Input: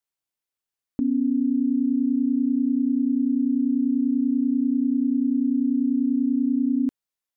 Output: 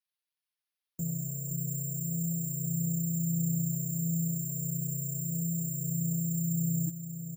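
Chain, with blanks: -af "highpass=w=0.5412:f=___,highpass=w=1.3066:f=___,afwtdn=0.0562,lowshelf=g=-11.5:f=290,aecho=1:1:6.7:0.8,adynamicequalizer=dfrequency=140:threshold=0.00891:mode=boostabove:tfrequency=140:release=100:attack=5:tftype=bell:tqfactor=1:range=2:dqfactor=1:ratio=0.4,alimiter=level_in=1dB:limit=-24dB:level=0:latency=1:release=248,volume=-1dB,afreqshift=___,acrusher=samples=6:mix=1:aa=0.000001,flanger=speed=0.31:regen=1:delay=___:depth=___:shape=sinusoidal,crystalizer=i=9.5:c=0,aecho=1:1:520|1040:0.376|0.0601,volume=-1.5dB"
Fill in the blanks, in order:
93, 93, -110, 5.4, 10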